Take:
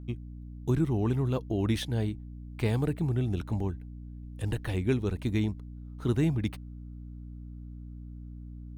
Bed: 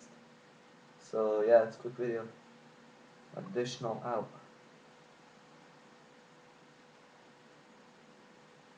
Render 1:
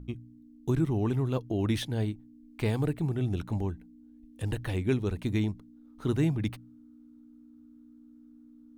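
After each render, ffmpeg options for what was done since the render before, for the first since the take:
-af "bandreject=f=60:t=h:w=4,bandreject=f=120:t=h:w=4,bandreject=f=180:t=h:w=4"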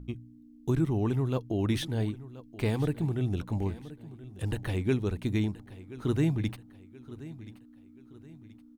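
-af "aecho=1:1:1028|2056|3084:0.141|0.0565|0.0226"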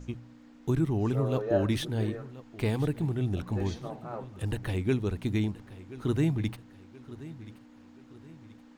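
-filter_complex "[1:a]volume=0.631[s0];[0:a][s0]amix=inputs=2:normalize=0"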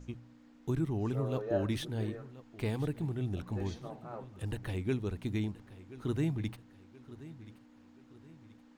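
-af "volume=0.531"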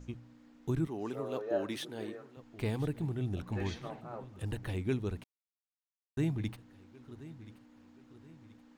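-filter_complex "[0:a]asettb=1/sr,asplit=3[s0][s1][s2];[s0]atrim=end=0.874[s3];[s1]atrim=start=0.87:end=2.37,asetpts=PTS-STARTPTS,afade=t=in:d=0.004:c=qsin,afade=t=out:st=1.496:d=0.004:c=qsin,highpass=290[s4];[s2]atrim=start=2.366[s5];[s3][s4]acrossfade=d=0.004:c1=hsin:c2=qsin[s6];[s6][s5]acrossfade=d=0.004:c1=qsin:c2=hsin,asettb=1/sr,asplit=3[s7][s8][s9];[s7]atrim=end=3.524[s10];[s8]atrim=start=3.52:end=4.01,asetpts=PTS-STARTPTS,afade=t=in:d=0.004:c=qsin,afade=t=out:st=0.486:d=0.004:c=qsin,equalizer=f=2100:w=0.82:g=10[s11];[s9]atrim=start=4.006[s12];[s10][s11]acrossfade=d=0.004:c1=hsin:c2=qsin[s13];[s13][s12]acrossfade=d=0.004:c1=qsin:c2=hsin,asplit=3[s14][s15][s16];[s14]atrim=end=5.24,asetpts=PTS-STARTPTS,afade=t=out:st=5.236:d=0.004:c=hsin[s17];[s15]atrim=start=5.24:end=6.17,asetpts=PTS-STARTPTS,volume=0[s18];[s16]atrim=start=6.17,asetpts=PTS-STARTPTS,afade=t=in:d=0.004:c=hsin[s19];[s17][s18][s19]concat=n=3:v=0:a=1"

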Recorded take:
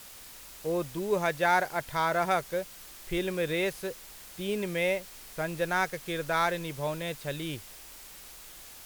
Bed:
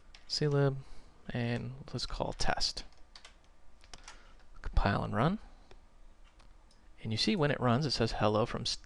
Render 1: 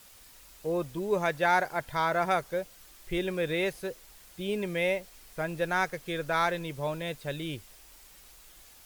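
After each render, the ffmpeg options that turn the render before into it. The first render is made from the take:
-af "afftdn=nr=7:nf=-48"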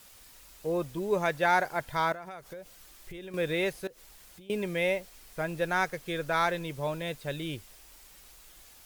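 -filter_complex "[0:a]asettb=1/sr,asplit=3[s0][s1][s2];[s0]atrim=end=2.124[s3];[s1]atrim=start=2.12:end=3.34,asetpts=PTS-STARTPTS,afade=t=in:d=0.004:c=qsin,afade=t=out:st=1.216:d=0.004:c=qsin,acompressor=threshold=0.0112:ratio=8:attack=3.2:release=140:knee=1:detection=peak[s4];[s2]atrim=start=3.336[s5];[s3][s4]acrossfade=d=0.004:c1=hsin:c2=qsin[s6];[s6][s5]acrossfade=d=0.004:c1=qsin:c2=hsin,asettb=1/sr,asplit=3[s7][s8][s9];[s7]atrim=end=3.874[s10];[s8]atrim=start=3.87:end=4.5,asetpts=PTS-STARTPTS,afade=t=in:d=0.004:c=qsin,afade=t=out:st=0.626:d=0.004:c=qsin,acompressor=threshold=0.00398:ratio=10:attack=3.2:release=140:knee=1:detection=peak[s11];[s9]atrim=start=4.496[s12];[s10][s11]acrossfade=d=0.004:c1=hsin:c2=qsin[s13];[s13][s12]acrossfade=d=0.004:c1=qsin:c2=hsin"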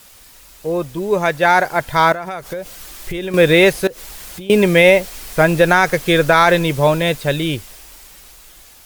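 -af "dynaudnorm=f=380:g=11:m=3.76,alimiter=level_in=2.99:limit=0.891:release=50:level=0:latency=1"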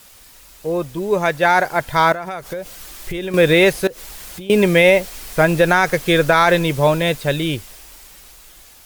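-af "volume=0.891,alimiter=limit=0.708:level=0:latency=1"

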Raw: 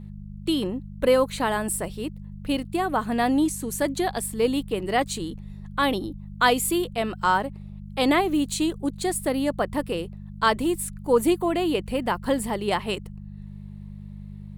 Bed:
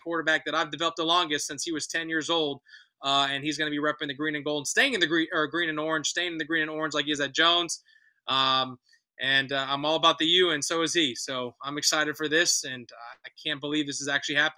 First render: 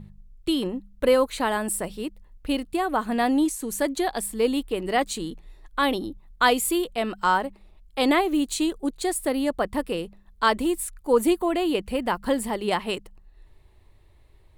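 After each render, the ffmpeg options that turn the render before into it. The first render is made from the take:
-af "bandreject=f=50:t=h:w=4,bandreject=f=100:t=h:w=4,bandreject=f=150:t=h:w=4,bandreject=f=200:t=h:w=4"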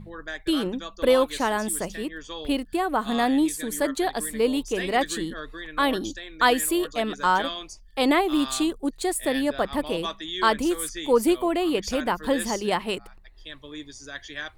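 -filter_complex "[1:a]volume=0.282[s0];[0:a][s0]amix=inputs=2:normalize=0"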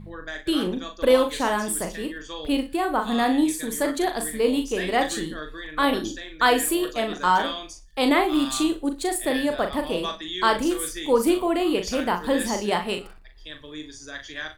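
-filter_complex "[0:a]asplit=2[s0][s1];[s1]adelay=39,volume=0.473[s2];[s0][s2]amix=inputs=2:normalize=0,aecho=1:1:61|122|183:0.168|0.047|0.0132"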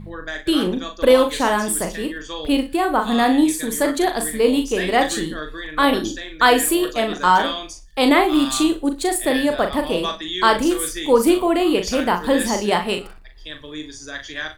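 -af "volume=1.78,alimiter=limit=0.708:level=0:latency=1"

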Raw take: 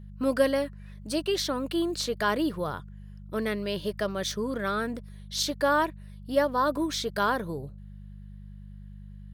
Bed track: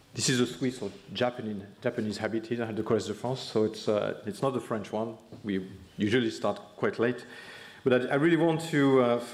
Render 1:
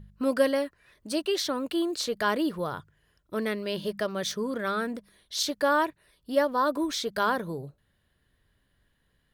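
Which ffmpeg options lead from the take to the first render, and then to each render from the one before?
-af "bandreject=f=50:t=h:w=4,bandreject=f=100:t=h:w=4,bandreject=f=150:t=h:w=4,bandreject=f=200:t=h:w=4"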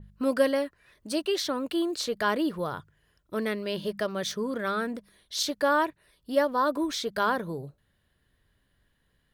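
-af "adynamicequalizer=threshold=0.00708:dfrequency=3900:dqfactor=0.7:tfrequency=3900:tqfactor=0.7:attack=5:release=100:ratio=0.375:range=1.5:mode=cutabove:tftype=highshelf"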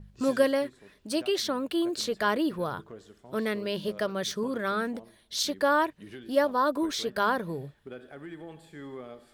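-filter_complex "[1:a]volume=0.112[s0];[0:a][s0]amix=inputs=2:normalize=0"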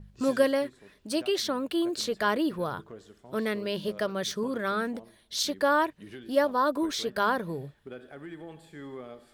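-af anull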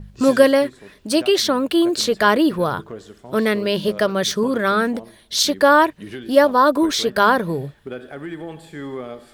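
-af "volume=3.55,alimiter=limit=0.891:level=0:latency=1"

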